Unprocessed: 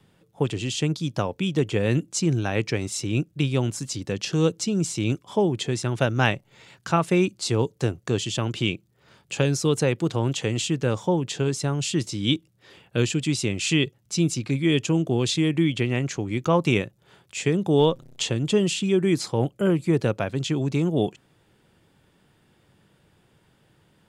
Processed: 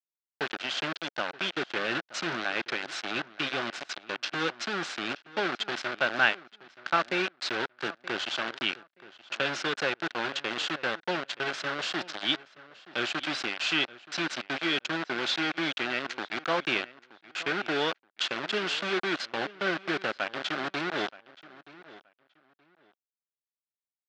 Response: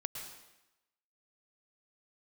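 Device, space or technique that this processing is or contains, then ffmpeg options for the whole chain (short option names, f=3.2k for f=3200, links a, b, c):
hand-held game console: -filter_complex "[0:a]aemphasis=mode=production:type=50kf,asettb=1/sr,asplit=3[a][b][c];[a]atrim=end=15.084[d];[b]atrim=start=15.08:end=16.32,asetpts=PTS-STARTPTS,afade=t=in:d=0.004:c=qsin,afade=t=out:st=1.236:d=0.004:c=qsin,highpass=49[e];[c]atrim=start=16.316[f];[d][e]acrossfade=d=0.004:c1=hsin:c2=qsin[g];[g][f]acrossfade=d=0.004:c1=qsin:c2=hsin,bandreject=f=50:t=h:w=6,bandreject=f=100:t=h:w=6,acrusher=bits=3:mix=0:aa=0.000001,highpass=430,equalizer=f=460:t=q:w=4:g=-7,equalizer=f=960:t=q:w=4:g=-4,equalizer=f=1.5k:t=q:w=4:g=8,lowpass=f=4.2k:w=0.5412,lowpass=f=4.2k:w=1.3066,asplit=2[h][i];[i]adelay=925,lowpass=f=3.7k:p=1,volume=-18.5dB,asplit=2[j][k];[k]adelay=925,lowpass=f=3.7k:p=1,volume=0.21[l];[h][j][l]amix=inputs=3:normalize=0,volume=-4dB"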